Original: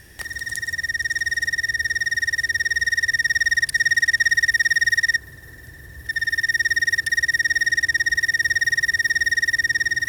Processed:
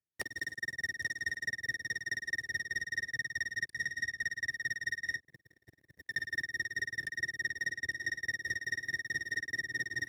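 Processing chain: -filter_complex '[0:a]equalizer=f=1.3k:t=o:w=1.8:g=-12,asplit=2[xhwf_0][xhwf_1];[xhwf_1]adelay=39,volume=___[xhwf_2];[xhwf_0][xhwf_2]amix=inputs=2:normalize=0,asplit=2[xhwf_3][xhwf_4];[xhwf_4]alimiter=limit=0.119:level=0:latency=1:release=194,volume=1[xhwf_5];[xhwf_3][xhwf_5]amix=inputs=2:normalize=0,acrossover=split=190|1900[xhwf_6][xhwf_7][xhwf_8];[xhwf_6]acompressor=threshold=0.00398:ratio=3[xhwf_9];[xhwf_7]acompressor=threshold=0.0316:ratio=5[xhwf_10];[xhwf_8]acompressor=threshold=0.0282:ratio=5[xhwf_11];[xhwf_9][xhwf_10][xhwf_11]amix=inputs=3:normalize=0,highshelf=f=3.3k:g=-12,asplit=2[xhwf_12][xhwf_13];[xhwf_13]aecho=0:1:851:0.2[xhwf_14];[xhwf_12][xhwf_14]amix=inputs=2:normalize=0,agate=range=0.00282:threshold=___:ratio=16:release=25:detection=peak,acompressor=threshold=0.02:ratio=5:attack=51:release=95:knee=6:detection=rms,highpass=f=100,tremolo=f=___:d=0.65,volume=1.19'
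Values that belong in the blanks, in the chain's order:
0.224, 0.00891, 4.7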